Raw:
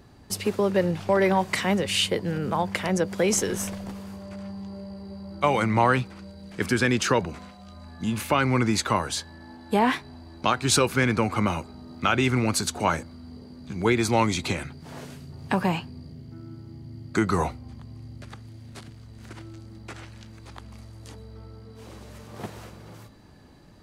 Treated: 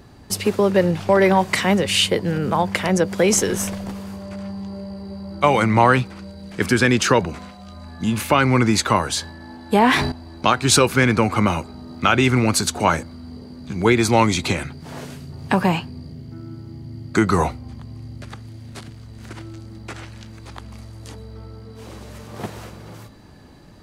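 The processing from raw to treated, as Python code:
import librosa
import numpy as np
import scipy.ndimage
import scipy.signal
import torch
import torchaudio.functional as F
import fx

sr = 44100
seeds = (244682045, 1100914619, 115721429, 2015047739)

y = fx.sustainer(x, sr, db_per_s=44.0, at=(9.2, 10.12))
y = y * 10.0 ** (6.0 / 20.0)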